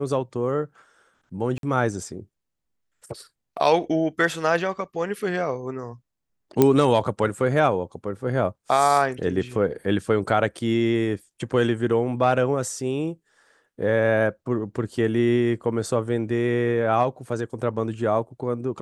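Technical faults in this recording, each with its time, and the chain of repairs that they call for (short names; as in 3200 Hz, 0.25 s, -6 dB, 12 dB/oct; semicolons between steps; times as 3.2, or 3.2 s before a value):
1.58–1.63 gap 52 ms
6.62 pop -4 dBFS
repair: de-click; interpolate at 1.58, 52 ms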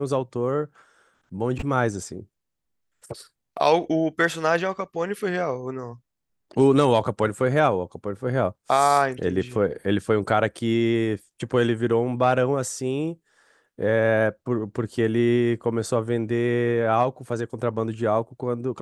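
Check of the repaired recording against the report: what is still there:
none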